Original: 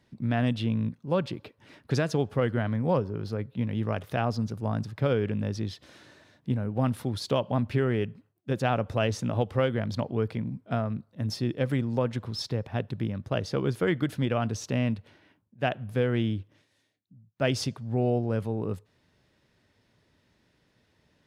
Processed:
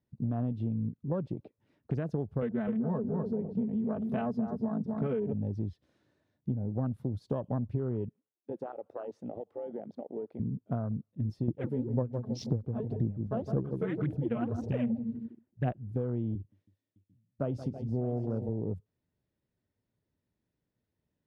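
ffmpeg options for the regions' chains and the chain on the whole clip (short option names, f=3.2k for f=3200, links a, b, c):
-filter_complex "[0:a]asettb=1/sr,asplit=3[a][b][c];[a]atrim=end=2.424[d];[b]atrim=start=2.42:end=5.33,asetpts=PTS-STARTPTS,afade=t=in:d=0.004:c=qsin,afade=t=out:st=2.906:d=0.004:c=qsin,aecho=1:1:4.6:0.97,atrim=end_sample=128331,asplit=2[e][f];[f]adelay=251,lowpass=f=2.8k:p=1,volume=-6dB,asplit=2[g][h];[h]adelay=251,lowpass=f=2.8k:p=1,volume=0.32,asplit=2[i][j];[j]adelay=251,lowpass=f=2.8k:p=1,volume=0.32,asplit=2[k][l];[l]adelay=251,lowpass=f=2.8k:p=1,volume=0.32[m];[e][g][i][k][m]amix=inputs=5:normalize=0,atrim=end_sample=128331[n];[c]atrim=start=5.326[o];[d][n]acrossfade=d=0.004:c1=hsin:c2=qsin[p];[p][o]acrossfade=d=0.004:c1=qsin:c2=hsin,asettb=1/sr,asplit=3[q][r][s];[q]atrim=end=8.094[t];[r]atrim=start=8.09:end=10.4,asetpts=PTS-STARTPTS,afade=t=in:d=0.004:c=qsin,afade=t=out:st=2.306:d=0.004:c=qsin,highpass=410,highshelf=f=2.9k:g=-10.5,acompressor=threshold=-31dB:ratio=16:attack=3.2:release=140:knee=1:detection=peak[u];[s]atrim=start=10.396[v];[t][u]acrossfade=d=0.004:c1=hsin:c2=qsin[w];[w][v]acrossfade=d=0.004:c1=qsin:c2=hsin,asettb=1/sr,asplit=3[x][y][z];[x]atrim=end=11.484[aa];[y]atrim=start=11.48:end=15.72,asetpts=PTS-STARTPTS,afade=t=in:d=0.004:c=qsin,afade=t=out:st=4.236:d=0.004:c=qsin,aphaser=in_gain=1:out_gain=1:delay=4.7:decay=0.8:speed=1.9:type=sinusoidal,asplit=2[ab][ac];[ac]adelay=159,lowpass=f=1.2k:p=1,volume=-9.5dB,asplit=2[ad][ae];[ae]adelay=159,lowpass=f=1.2k:p=1,volume=0.3,asplit=2[af][ag];[ag]adelay=159,lowpass=f=1.2k:p=1,volume=0.3[ah];[ab][ad][af][ah]amix=inputs=4:normalize=0,atrim=end_sample=186984[ai];[z]atrim=start=15.716[aj];[aa][ai]acrossfade=d=0.004:c1=hsin:c2=qsin[ak];[ak][aj]acrossfade=d=0.004:c1=qsin:c2=hsin,asettb=1/sr,asplit=3[al][am][an];[al]atrim=end=16.354[ao];[am]atrim=start=16.35:end=18.49,asetpts=PTS-STARTPTS,afade=t=in:d=0.004:c=qsin,afade=t=out:st=2.136:d=0.004:c=qsin,highpass=100,aecho=1:1:40|172|323|609|745:0.126|0.178|0.178|0.188|0.133,atrim=end_sample=94374[ap];[an]atrim=start=18.486[aq];[ao][ap]acrossfade=d=0.004:c1=hsin:c2=qsin[ar];[ar][aq]acrossfade=d=0.004:c1=qsin:c2=hsin,afwtdn=0.0224,tiltshelf=f=780:g=6,acompressor=threshold=-25dB:ratio=6,volume=-3.5dB"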